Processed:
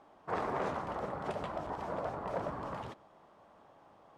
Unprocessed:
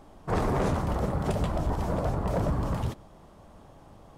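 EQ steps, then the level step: band-pass 1200 Hz, Q 0.56; -3.5 dB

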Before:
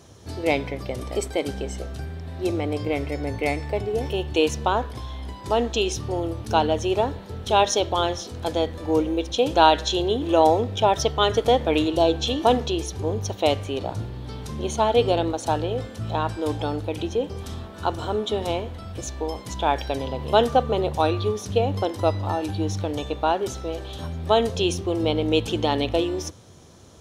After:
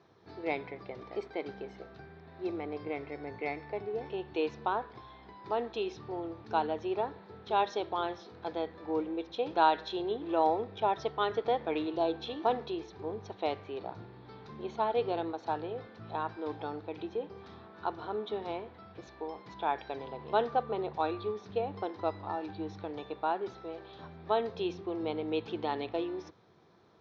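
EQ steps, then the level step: air absorption 180 m; speaker cabinet 220–4700 Hz, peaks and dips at 260 Hz -9 dB, 560 Hz -8 dB, 3000 Hz -9 dB; -7.0 dB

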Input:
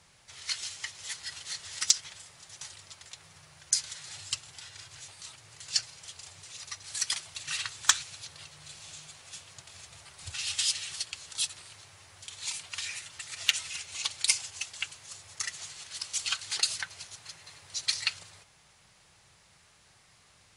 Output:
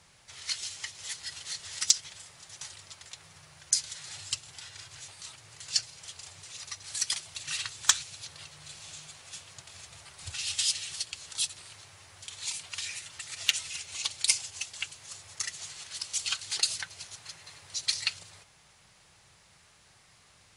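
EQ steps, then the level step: dynamic EQ 1400 Hz, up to -4 dB, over -46 dBFS, Q 0.72; +1.0 dB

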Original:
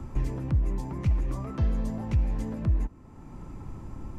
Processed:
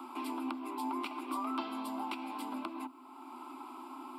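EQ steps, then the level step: rippled Chebyshev high-pass 250 Hz, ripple 6 dB; high shelf 2100 Hz +9.5 dB; fixed phaser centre 1800 Hz, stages 6; +7.5 dB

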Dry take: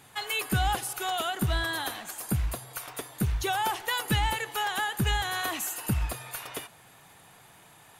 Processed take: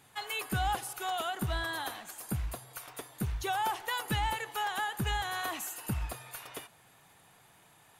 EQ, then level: dynamic EQ 900 Hz, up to +4 dB, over -40 dBFS, Q 0.88; -6.5 dB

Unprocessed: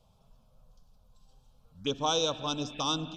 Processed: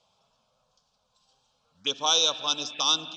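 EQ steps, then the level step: HPF 1300 Hz 6 dB/oct; LPF 7100 Hz 24 dB/oct; dynamic EQ 4900 Hz, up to +5 dB, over -46 dBFS, Q 1.1; +6.5 dB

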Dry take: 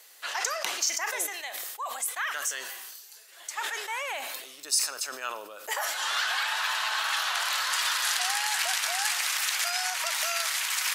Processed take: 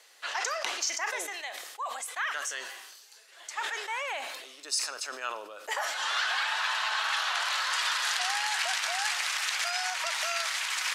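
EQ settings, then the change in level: HPF 240 Hz 12 dB/oct; air absorption 57 m; 0.0 dB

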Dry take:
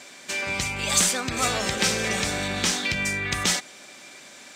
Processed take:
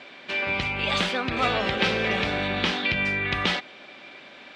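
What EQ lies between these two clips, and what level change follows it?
air absorption 370 m; tone controls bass -4 dB, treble -11 dB; band shelf 6000 Hz +9.5 dB 2.6 oct; +4.0 dB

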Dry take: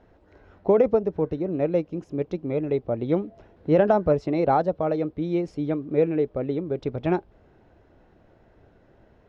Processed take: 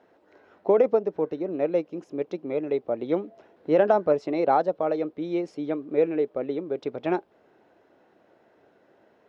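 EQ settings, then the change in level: HPF 300 Hz 12 dB/oct; 0.0 dB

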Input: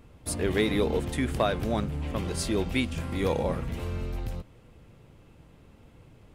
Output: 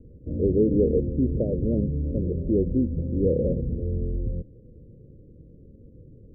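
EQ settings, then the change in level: steep low-pass 540 Hz 72 dB/oct; +5.5 dB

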